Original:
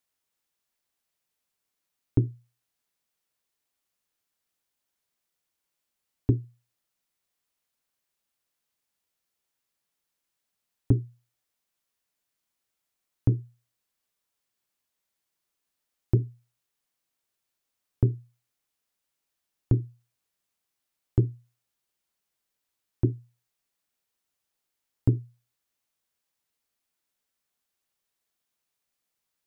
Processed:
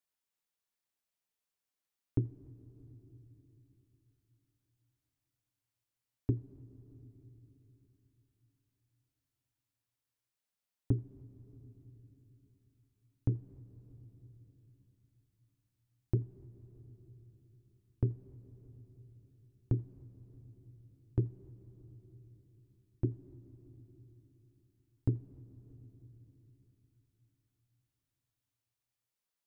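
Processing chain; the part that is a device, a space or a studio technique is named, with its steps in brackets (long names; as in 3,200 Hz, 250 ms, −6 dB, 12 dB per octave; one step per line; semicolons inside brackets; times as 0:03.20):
compressed reverb return (on a send at −12 dB: convolution reverb RT60 2.9 s, pre-delay 79 ms + downward compressor, threshold −30 dBFS, peak gain reduction 9 dB)
on the sum: level −8.5 dB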